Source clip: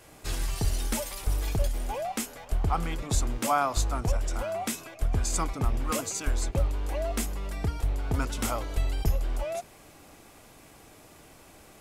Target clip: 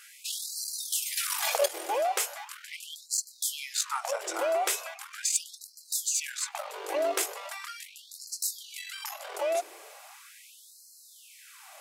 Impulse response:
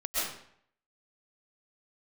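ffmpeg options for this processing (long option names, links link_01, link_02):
-filter_complex "[0:a]aeval=exprs='(tanh(7.94*val(0)+0.35)-tanh(0.35))/7.94':channel_layout=same,asettb=1/sr,asplit=3[link_01][link_02][link_03];[link_01]atrim=end=1.174[link_04];[link_02]atrim=start=1.17:end=1.66,asetpts=PTS-STARTPTS,afade=type=in:duration=0.004:curve=qsin,afade=type=out:start_time=0.486:duration=0.004:curve=qsin,acontrast=66[link_05];[link_03]atrim=start=1.656[link_06];[link_04][link_05]acrossfade=duration=0.004:curve1=hsin:curve2=qsin[link_07];[link_07][link_06]acrossfade=duration=0.004:curve1=qsin:curve2=hsin,afftfilt=real='re*gte(b*sr/1024,290*pow(4100/290,0.5+0.5*sin(2*PI*0.39*pts/sr)))':imag='im*gte(b*sr/1024,290*pow(4100/290,0.5+0.5*sin(2*PI*0.39*pts/sr)))':win_size=1024:overlap=0.75,volume=6.5dB"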